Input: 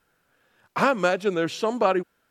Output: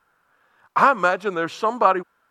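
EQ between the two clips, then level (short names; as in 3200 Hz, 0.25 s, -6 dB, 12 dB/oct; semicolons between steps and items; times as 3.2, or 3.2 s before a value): bell 1100 Hz +13.5 dB 1.2 oct; -3.5 dB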